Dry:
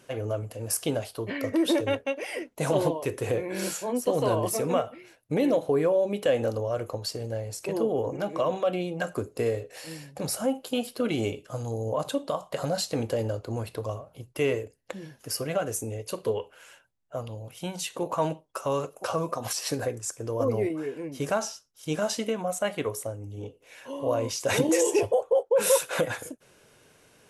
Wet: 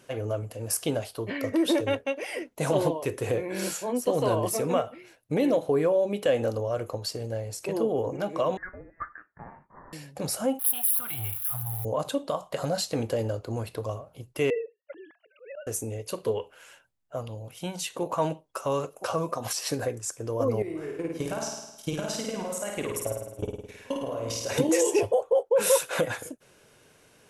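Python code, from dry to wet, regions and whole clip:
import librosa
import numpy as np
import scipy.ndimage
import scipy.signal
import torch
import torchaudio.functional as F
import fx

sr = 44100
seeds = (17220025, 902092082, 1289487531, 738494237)

y = fx.chain(x, sr, fx.ellip_highpass(hz=1000.0, order=4, stop_db=50),
    fx.freq_invert(carrier_hz=2800), at=(8.57, 9.93))
y = fx.chain(y, sr, fx.crossing_spikes(level_db=-28.5),
    fx.curve_eq(hz=(120.0, 190.0, 270.0, 520.0, 750.0, 1400.0, 2500.0, 3700.0, 6400.0, 11000.0), db=(0, -23, -21, -27, -2, -1, -8, -7, -25, 12)), at=(10.59, 11.85))
y = fx.chain(y, sr, fx.sine_speech(),
    fx.auto_swell(attack_ms=207.0), at=(14.5, 15.67))
y = fx.chain(y, sr, fx.level_steps(step_db=18),
    fx.transient(attack_db=10, sustain_db=5),
    fx.room_flutter(wall_m=9.1, rt60_s=0.92), at=(20.62, 24.58))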